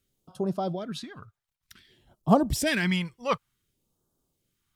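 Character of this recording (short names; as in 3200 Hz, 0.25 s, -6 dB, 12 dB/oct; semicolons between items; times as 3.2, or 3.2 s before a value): phasing stages 2, 0.55 Hz, lowest notch 280–2100 Hz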